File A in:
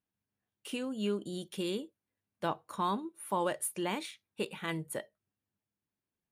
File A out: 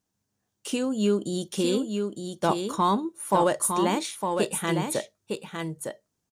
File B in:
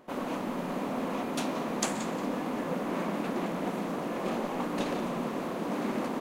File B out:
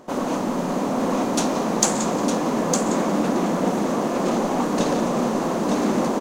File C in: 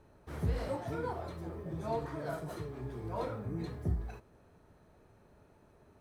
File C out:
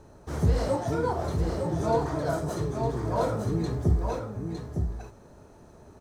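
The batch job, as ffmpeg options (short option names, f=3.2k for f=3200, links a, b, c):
-filter_complex "[0:a]firequalizer=gain_entry='entry(820,0);entry(2300,-6);entry(6300,7);entry(11000,-3)':delay=0.05:min_phase=1,asplit=2[a][b];[b]asoftclip=type=tanh:threshold=-23dB,volume=-4.5dB[c];[a][c]amix=inputs=2:normalize=0,aecho=1:1:908:0.531,volume=6dB"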